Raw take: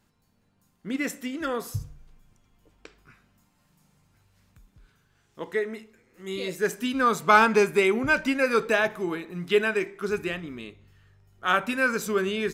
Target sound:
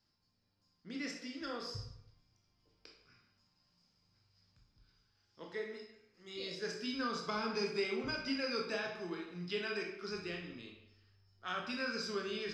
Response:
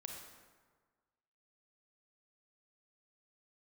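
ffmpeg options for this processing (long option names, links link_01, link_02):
-filter_complex "[0:a]lowpass=frequency=5000:width_type=q:width=13,acrossover=split=460[link_01][link_02];[link_02]acompressor=threshold=-22dB:ratio=10[link_03];[link_01][link_03]amix=inputs=2:normalize=0[link_04];[1:a]atrim=start_sample=2205,asetrate=88200,aresample=44100[link_05];[link_04][link_05]afir=irnorm=-1:irlink=0,volume=-4dB"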